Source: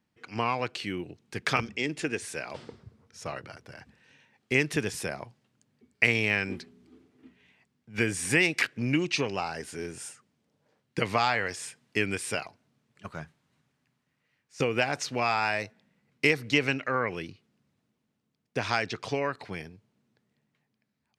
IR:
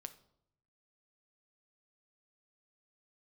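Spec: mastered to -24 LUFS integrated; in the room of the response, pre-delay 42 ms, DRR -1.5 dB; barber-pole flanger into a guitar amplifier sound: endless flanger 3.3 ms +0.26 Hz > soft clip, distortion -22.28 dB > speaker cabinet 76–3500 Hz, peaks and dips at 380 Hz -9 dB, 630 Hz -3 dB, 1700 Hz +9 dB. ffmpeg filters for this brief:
-filter_complex "[0:a]asplit=2[a][b];[1:a]atrim=start_sample=2205,adelay=42[c];[b][c]afir=irnorm=-1:irlink=0,volume=6.5dB[d];[a][d]amix=inputs=2:normalize=0,asplit=2[e][f];[f]adelay=3.3,afreqshift=0.26[g];[e][g]amix=inputs=2:normalize=1,asoftclip=threshold=-13.5dB,highpass=76,equalizer=f=380:t=q:w=4:g=-9,equalizer=f=630:t=q:w=4:g=-3,equalizer=f=1.7k:t=q:w=4:g=9,lowpass=f=3.5k:w=0.5412,lowpass=f=3.5k:w=1.3066,volume=3.5dB"

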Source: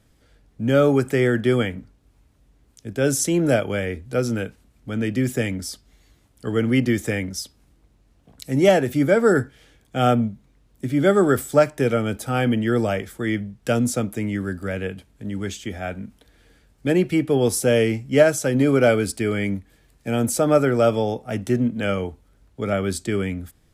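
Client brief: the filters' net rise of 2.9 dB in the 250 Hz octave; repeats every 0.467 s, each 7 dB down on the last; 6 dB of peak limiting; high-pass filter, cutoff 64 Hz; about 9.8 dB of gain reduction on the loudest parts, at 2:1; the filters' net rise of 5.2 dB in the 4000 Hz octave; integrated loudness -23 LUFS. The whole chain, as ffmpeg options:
-af "highpass=64,equalizer=f=250:t=o:g=3.5,equalizer=f=4k:t=o:g=7.5,acompressor=threshold=-27dB:ratio=2,alimiter=limit=-18.5dB:level=0:latency=1,aecho=1:1:467|934|1401|1868|2335:0.447|0.201|0.0905|0.0407|0.0183,volume=5dB"

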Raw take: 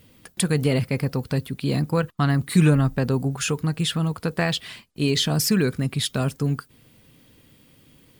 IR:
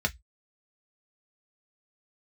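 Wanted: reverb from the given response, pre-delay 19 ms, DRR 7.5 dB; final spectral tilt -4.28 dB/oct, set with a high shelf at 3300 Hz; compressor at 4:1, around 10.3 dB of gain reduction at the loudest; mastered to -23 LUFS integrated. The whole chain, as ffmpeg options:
-filter_complex "[0:a]highshelf=f=3.3k:g=8.5,acompressor=threshold=-25dB:ratio=4,asplit=2[a][b];[1:a]atrim=start_sample=2205,adelay=19[c];[b][c]afir=irnorm=-1:irlink=0,volume=-16dB[d];[a][d]amix=inputs=2:normalize=0,volume=5dB"

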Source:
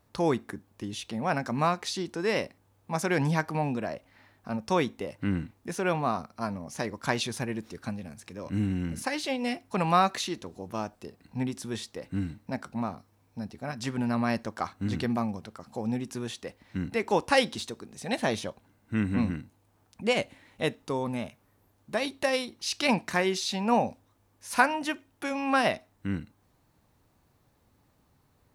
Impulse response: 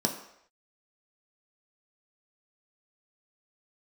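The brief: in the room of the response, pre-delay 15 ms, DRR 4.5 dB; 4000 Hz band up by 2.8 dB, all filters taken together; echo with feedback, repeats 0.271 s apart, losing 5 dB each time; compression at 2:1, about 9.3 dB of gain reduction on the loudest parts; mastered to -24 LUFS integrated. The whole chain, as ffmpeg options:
-filter_complex "[0:a]equalizer=f=4k:t=o:g=3.5,acompressor=threshold=-34dB:ratio=2,aecho=1:1:271|542|813|1084|1355|1626|1897:0.562|0.315|0.176|0.0988|0.0553|0.031|0.0173,asplit=2[a][b];[1:a]atrim=start_sample=2205,adelay=15[c];[b][c]afir=irnorm=-1:irlink=0,volume=-12.5dB[d];[a][d]amix=inputs=2:normalize=0,volume=7dB"

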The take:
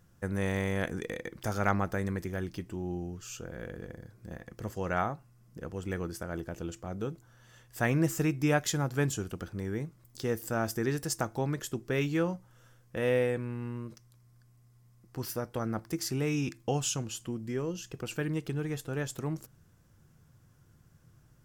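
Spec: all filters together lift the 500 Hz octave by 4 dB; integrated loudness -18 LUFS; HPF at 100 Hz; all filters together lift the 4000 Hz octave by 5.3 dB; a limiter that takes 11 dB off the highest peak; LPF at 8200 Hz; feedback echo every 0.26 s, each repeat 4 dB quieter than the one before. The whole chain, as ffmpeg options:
-af "highpass=100,lowpass=8.2k,equalizer=f=500:t=o:g=4.5,equalizer=f=4k:t=o:g=7.5,alimiter=limit=-19.5dB:level=0:latency=1,aecho=1:1:260|520|780|1040|1300|1560|1820|2080|2340:0.631|0.398|0.25|0.158|0.0994|0.0626|0.0394|0.0249|0.0157,volume=13.5dB"

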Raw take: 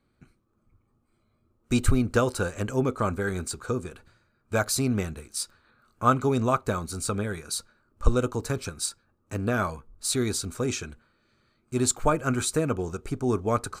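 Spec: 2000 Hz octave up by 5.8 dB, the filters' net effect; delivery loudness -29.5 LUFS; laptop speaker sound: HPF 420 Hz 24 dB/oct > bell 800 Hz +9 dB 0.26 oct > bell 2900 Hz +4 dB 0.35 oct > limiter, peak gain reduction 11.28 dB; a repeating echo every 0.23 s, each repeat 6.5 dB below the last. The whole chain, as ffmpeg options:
-af "highpass=f=420:w=0.5412,highpass=f=420:w=1.3066,equalizer=f=800:t=o:w=0.26:g=9,equalizer=f=2k:t=o:g=8,equalizer=f=2.9k:t=o:w=0.35:g=4,aecho=1:1:230|460|690|920|1150|1380:0.473|0.222|0.105|0.0491|0.0231|0.0109,alimiter=limit=-16dB:level=0:latency=1"

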